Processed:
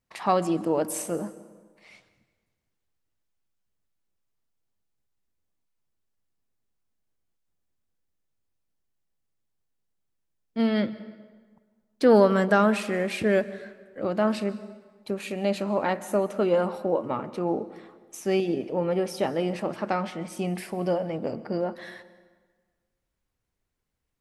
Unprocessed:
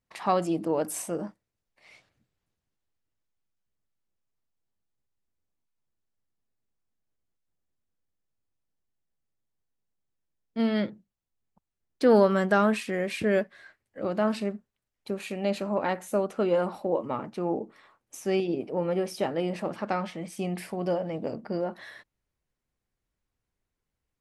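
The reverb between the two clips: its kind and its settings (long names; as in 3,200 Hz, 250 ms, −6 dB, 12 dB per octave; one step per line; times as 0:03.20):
dense smooth reverb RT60 1.5 s, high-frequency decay 0.7×, pre-delay 115 ms, DRR 16.5 dB
level +2 dB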